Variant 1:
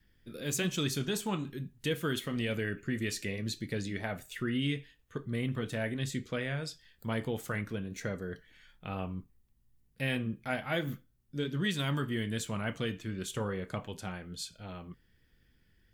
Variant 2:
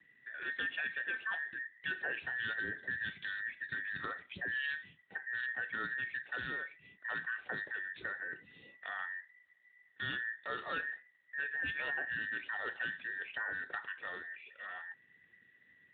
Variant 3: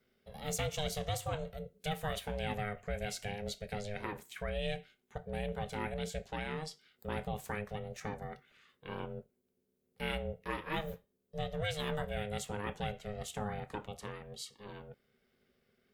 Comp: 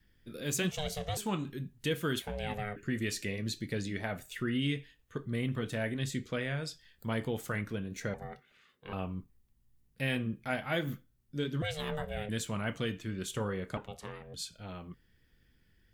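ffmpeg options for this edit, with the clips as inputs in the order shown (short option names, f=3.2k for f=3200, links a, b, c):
-filter_complex "[2:a]asplit=5[a][b][c][d][e];[0:a]asplit=6[f][g][h][i][j][k];[f]atrim=end=0.712[l];[a]atrim=start=0.708:end=1.172[m];[g]atrim=start=1.168:end=2.222[n];[b]atrim=start=2.218:end=2.762[o];[h]atrim=start=2.758:end=8.142[p];[c]atrim=start=8.138:end=8.932[q];[i]atrim=start=8.928:end=11.622[r];[d]atrim=start=11.618:end=12.292[s];[j]atrim=start=12.288:end=13.772[t];[e]atrim=start=13.768:end=14.342[u];[k]atrim=start=14.338[v];[l][m]acrossfade=d=0.004:c1=hsin:c2=hsin[w];[w][n]acrossfade=d=0.004:c1=hsin:c2=hsin[x];[x][o]acrossfade=d=0.004:c1=hsin:c2=hsin[y];[y][p]acrossfade=d=0.004:c1=hsin:c2=hsin[z];[z][q]acrossfade=d=0.004:c1=hsin:c2=hsin[aa];[aa][r]acrossfade=d=0.004:c1=hsin:c2=hsin[ab];[ab][s]acrossfade=d=0.004:c1=hsin:c2=hsin[ac];[ac][t]acrossfade=d=0.004:c1=hsin:c2=hsin[ad];[ad][u]acrossfade=d=0.004:c1=hsin:c2=hsin[ae];[ae][v]acrossfade=d=0.004:c1=hsin:c2=hsin"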